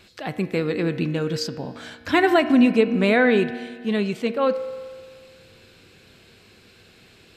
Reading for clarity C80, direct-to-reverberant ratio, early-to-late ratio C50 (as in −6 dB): 12.5 dB, 9.5 dB, 11.5 dB